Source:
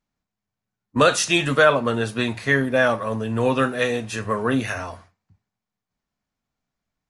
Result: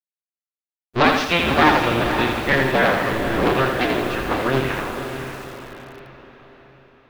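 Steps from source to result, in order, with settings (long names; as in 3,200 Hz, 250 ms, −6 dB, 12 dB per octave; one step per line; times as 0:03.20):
sub-harmonics by changed cycles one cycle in 2, inverted
low-pass filter 4,200 Hz 24 dB per octave
bit reduction 10 bits
on a send: feedback delay with all-pass diffusion 528 ms, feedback 47%, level −7.5 dB
on the sum: feedback echo at a low word length 83 ms, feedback 55%, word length 6 bits, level −5 dB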